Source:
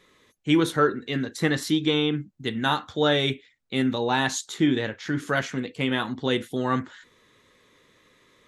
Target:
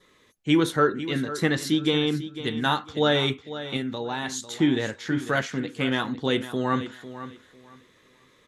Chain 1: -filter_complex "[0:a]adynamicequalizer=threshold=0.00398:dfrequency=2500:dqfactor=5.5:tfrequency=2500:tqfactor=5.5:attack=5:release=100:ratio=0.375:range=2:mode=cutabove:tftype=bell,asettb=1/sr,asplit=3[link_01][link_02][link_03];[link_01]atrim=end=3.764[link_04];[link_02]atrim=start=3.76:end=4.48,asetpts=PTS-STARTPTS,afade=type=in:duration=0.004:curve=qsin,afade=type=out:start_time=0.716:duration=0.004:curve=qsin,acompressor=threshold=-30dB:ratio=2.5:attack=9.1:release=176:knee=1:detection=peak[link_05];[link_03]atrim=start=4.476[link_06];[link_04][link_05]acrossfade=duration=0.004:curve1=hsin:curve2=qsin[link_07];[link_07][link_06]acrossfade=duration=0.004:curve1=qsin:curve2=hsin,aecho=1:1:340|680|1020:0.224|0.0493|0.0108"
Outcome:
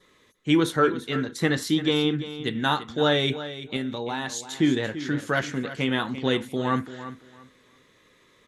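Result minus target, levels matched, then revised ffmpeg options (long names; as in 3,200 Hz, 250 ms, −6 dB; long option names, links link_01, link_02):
echo 159 ms early
-filter_complex "[0:a]adynamicequalizer=threshold=0.00398:dfrequency=2500:dqfactor=5.5:tfrequency=2500:tqfactor=5.5:attack=5:release=100:ratio=0.375:range=2:mode=cutabove:tftype=bell,asettb=1/sr,asplit=3[link_01][link_02][link_03];[link_01]atrim=end=3.764[link_04];[link_02]atrim=start=3.76:end=4.48,asetpts=PTS-STARTPTS,afade=type=in:duration=0.004:curve=qsin,afade=type=out:start_time=0.716:duration=0.004:curve=qsin,acompressor=threshold=-30dB:ratio=2.5:attack=9.1:release=176:knee=1:detection=peak[link_05];[link_03]atrim=start=4.476[link_06];[link_04][link_05]acrossfade=duration=0.004:curve1=hsin:curve2=qsin[link_07];[link_07][link_06]acrossfade=duration=0.004:curve1=qsin:curve2=hsin,aecho=1:1:499|998|1497:0.224|0.0493|0.0108"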